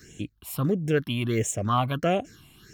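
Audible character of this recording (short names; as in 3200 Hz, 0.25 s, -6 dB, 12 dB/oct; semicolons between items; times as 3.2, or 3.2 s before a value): phasing stages 6, 1.5 Hz, lowest notch 420–1300 Hz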